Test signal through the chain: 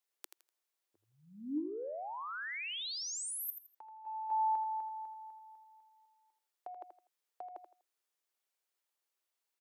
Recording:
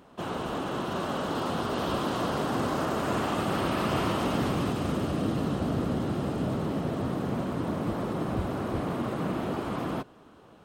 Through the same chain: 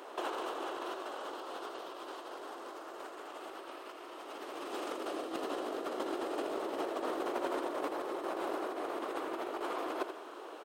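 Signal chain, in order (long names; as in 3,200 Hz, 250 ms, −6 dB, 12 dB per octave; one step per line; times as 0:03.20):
elliptic high-pass filter 340 Hz, stop band 80 dB
compressor whose output falls as the input rises −39 dBFS, ratio −0.5
on a send: repeating echo 82 ms, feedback 27%, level −9 dB
on the sum: level +1 dB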